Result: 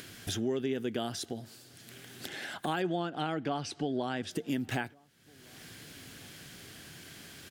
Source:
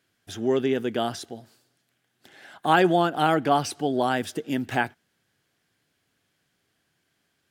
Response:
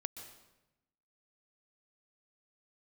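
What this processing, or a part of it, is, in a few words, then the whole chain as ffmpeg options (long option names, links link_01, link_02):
upward and downward compression: -filter_complex "[0:a]asettb=1/sr,asplit=3[link_01][link_02][link_03];[link_01]atrim=end=2.824[link_04];[link_02]atrim=start=2.82:end=4.31,asetpts=PTS-STARTPTS,afade=type=in:duration=0.004:curve=qsin,afade=type=out:start_time=1.486:duration=0.004:curve=qsin,lowpass=5600[link_05];[link_03]atrim=start=4.306[link_06];[link_04][link_05]acrossfade=duration=0.004:curve1=hsin:curve2=qsin[link_07];[link_07][link_06]acrossfade=duration=0.004:curve1=qsin:curve2=hsin,acompressor=mode=upward:threshold=-27dB:ratio=2.5,acompressor=threshold=-28dB:ratio=3,equalizer=frequency=900:width_type=o:width=2.1:gain=-6,asplit=2[link_08][link_09];[link_09]adelay=1458,volume=-28dB,highshelf=frequency=4000:gain=-32.8[link_10];[link_08][link_10]amix=inputs=2:normalize=0"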